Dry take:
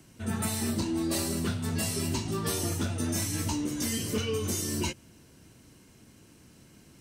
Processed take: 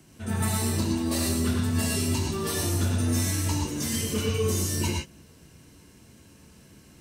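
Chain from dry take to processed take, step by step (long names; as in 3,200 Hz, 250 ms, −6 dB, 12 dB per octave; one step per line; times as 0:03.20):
reverb whose tail is shaped and stops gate 140 ms rising, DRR 0 dB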